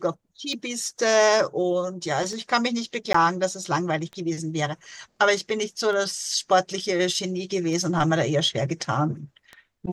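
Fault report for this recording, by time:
scratch tick 33 1/3 rpm −23 dBFS
0:03.13–0:03.14: drop-out 14 ms

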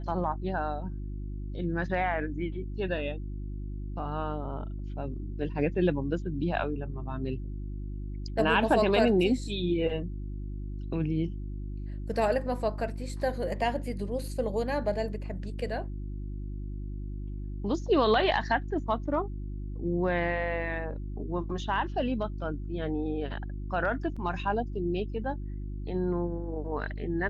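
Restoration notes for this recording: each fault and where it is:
mains hum 50 Hz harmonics 7 −36 dBFS
0:24.16: drop-out 5 ms

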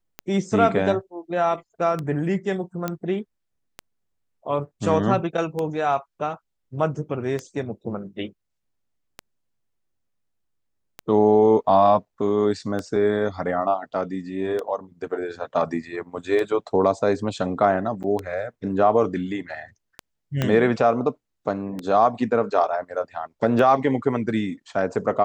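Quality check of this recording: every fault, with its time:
scratch tick 33 1/3 rpm −15 dBFS
0:02.88: click −12 dBFS
0:18.03–0:18.04: drop-out 8 ms
0:20.42: click −9 dBFS

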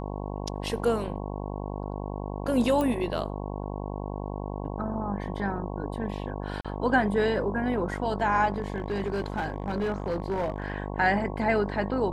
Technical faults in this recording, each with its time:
mains buzz 50 Hz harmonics 22 −34 dBFS
0:02.81: click −16 dBFS
0:06.61–0:06.65: drop-out 36 ms
0:08.54–0:10.70: clipping −24 dBFS

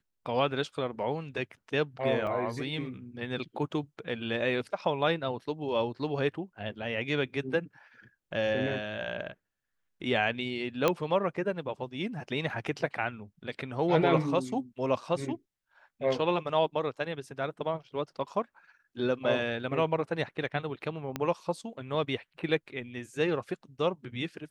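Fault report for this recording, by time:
0:02.27: drop-out 3.9 ms
0:10.88: click −11 dBFS
0:21.16: click −17 dBFS

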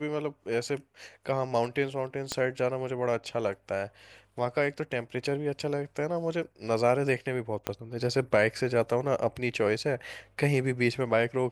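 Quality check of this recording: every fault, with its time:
0:02.32: click −15 dBFS
0:07.67: click −14 dBFS

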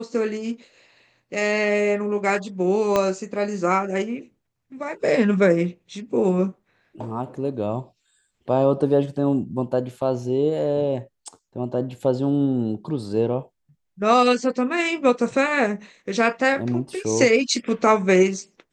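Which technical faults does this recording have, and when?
0:02.96: click −7 dBFS

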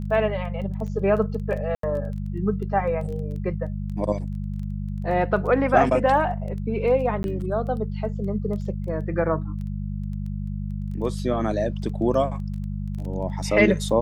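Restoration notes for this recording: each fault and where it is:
surface crackle 12 per second −33 dBFS
mains hum 50 Hz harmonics 4 −29 dBFS
0:01.75–0:01.83: drop-out 83 ms
0:07.23–0:07.24: drop-out 11 ms

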